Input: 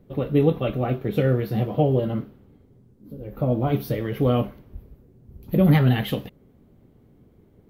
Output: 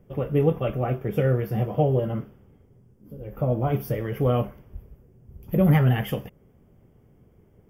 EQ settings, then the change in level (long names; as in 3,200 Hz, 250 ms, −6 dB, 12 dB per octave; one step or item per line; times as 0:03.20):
parametric band 270 Hz −6.5 dB 0.7 octaves
dynamic equaliser 3,500 Hz, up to −5 dB, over −49 dBFS, Q 1.1
Butterworth band-reject 4,000 Hz, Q 3
0.0 dB